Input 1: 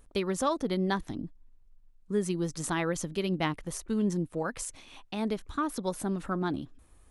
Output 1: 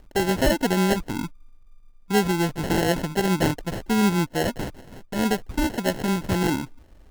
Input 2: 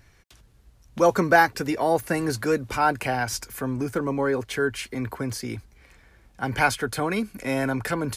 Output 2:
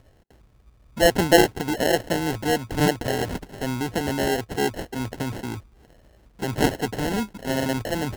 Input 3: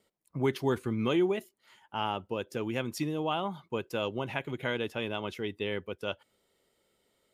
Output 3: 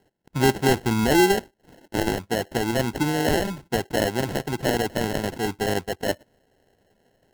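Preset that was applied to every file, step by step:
sample-and-hold 37×; normalise loudness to -24 LUFS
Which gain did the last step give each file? +8.0 dB, +0.5 dB, +9.0 dB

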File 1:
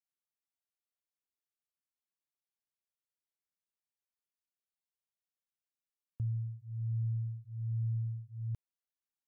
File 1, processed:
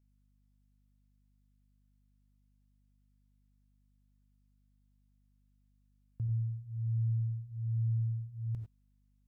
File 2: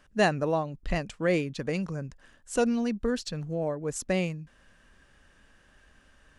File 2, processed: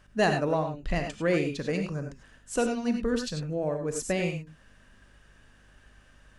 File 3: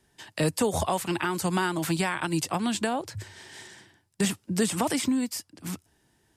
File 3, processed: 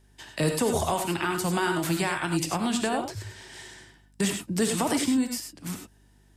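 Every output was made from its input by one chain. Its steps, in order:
saturation -12.5 dBFS; gated-style reverb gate 120 ms rising, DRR 4.5 dB; hum 50 Hz, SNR 31 dB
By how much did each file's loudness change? +2.5 LU, +0.5 LU, +1.0 LU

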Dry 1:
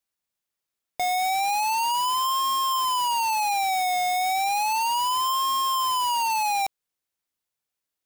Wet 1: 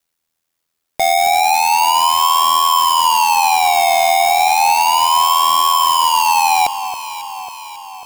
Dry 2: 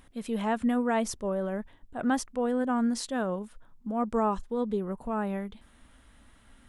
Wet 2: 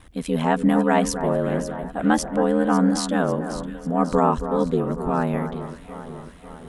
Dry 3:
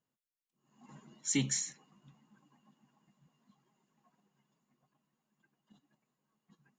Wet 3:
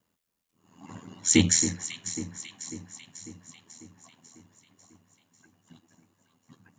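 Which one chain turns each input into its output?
ring modulator 41 Hz; echo whose repeats swap between lows and highs 273 ms, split 1.8 kHz, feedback 75%, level -10 dB; peak normalisation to -6 dBFS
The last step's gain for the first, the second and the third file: +13.5 dB, +11.0 dB, +14.5 dB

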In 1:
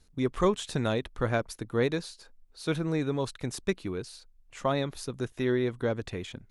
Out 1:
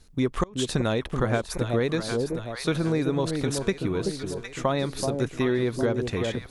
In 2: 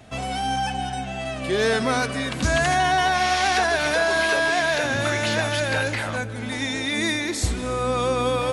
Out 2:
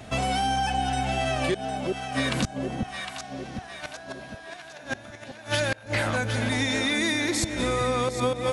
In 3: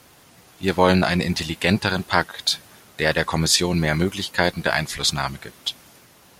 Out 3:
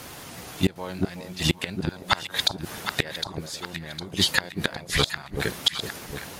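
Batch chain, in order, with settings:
inverted gate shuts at -13 dBFS, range -29 dB; echo whose repeats swap between lows and highs 379 ms, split 830 Hz, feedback 68%, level -7 dB; compression 6:1, threshold -27 dBFS; normalise loudness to -27 LUFS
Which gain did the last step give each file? +7.0 dB, +5.0 dB, +10.5 dB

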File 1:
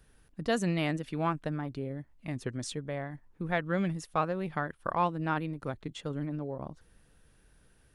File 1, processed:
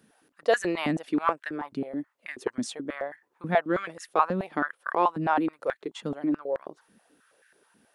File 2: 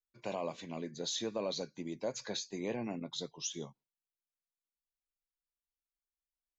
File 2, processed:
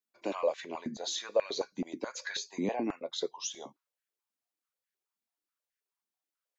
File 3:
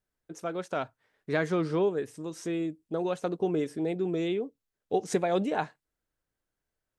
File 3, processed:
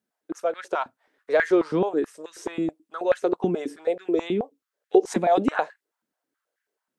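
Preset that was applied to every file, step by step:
step-sequenced high-pass 9.3 Hz 220–1700 Hz; trim +1.5 dB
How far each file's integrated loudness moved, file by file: +4.5 LU, +4.0 LU, +6.0 LU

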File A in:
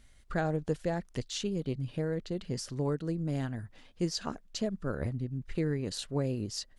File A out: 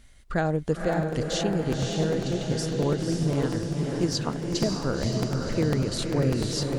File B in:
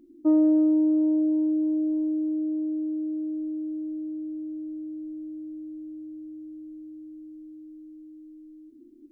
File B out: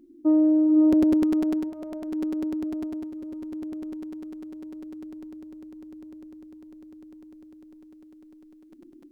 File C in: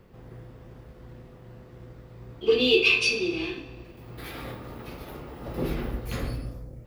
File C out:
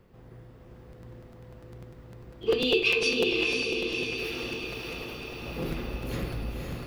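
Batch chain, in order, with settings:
on a send: echo that smears into a reverb 531 ms, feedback 62%, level -3 dB; on the sum: crackling interface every 0.10 s, samples 256, repeat, from 0.92 s; peak normalisation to -12 dBFS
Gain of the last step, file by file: +5.5 dB, +0.5 dB, -4.0 dB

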